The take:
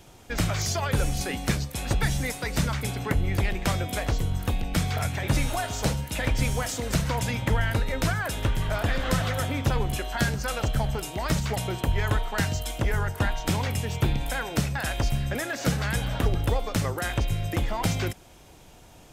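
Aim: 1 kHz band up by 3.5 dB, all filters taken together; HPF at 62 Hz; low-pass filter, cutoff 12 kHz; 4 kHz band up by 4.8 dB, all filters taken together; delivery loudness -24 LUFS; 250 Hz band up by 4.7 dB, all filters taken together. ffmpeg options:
-af "highpass=62,lowpass=12000,equalizer=f=250:t=o:g=6.5,equalizer=f=1000:t=o:g=4,equalizer=f=4000:t=o:g=6,volume=1.19"

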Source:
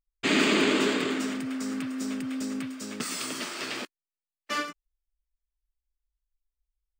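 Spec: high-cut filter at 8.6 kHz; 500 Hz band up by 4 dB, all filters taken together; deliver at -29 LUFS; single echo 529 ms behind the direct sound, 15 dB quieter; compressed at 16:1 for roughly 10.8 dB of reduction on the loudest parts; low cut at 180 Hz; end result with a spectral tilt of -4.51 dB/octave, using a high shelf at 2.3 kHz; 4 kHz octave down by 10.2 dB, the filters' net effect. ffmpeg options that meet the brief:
-af "highpass=180,lowpass=8600,equalizer=f=500:t=o:g=6,highshelf=f=2300:g=-7.5,equalizer=f=4000:t=o:g=-7,acompressor=threshold=0.0355:ratio=16,aecho=1:1:529:0.178,volume=2"

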